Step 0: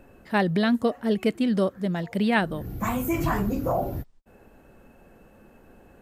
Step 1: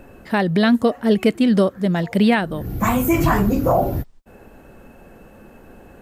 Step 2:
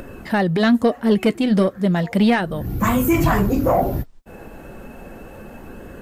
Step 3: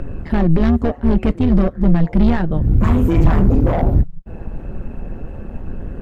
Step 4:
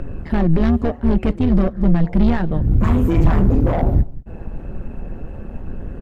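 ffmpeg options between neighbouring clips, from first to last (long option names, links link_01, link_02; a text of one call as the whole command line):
ffmpeg -i in.wav -af "alimiter=limit=-14.5dB:level=0:latency=1:release=408,volume=8.5dB" out.wav
ffmpeg -i in.wav -filter_complex "[0:a]asplit=2[link_01][link_02];[link_02]acompressor=mode=upward:threshold=-23dB:ratio=2.5,volume=-2dB[link_03];[link_01][link_03]amix=inputs=2:normalize=0,asoftclip=type=tanh:threshold=-3dB,flanger=delay=0.6:depth=5.6:regen=-62:speed=0.34:shape=sinusoidal" out.wav
ffmpeg -i in.wav -af "asoftclip=type=hard:threshold=-17.5dB,tremolo=f=160:d=0.75,aemphasis=mode=reproduction:type=riaa,volume=1.5dB" out.wav
ffmpeg -i in.wav -af "aecho=1:1:193:0.075,volume=-1.5dB" out.wav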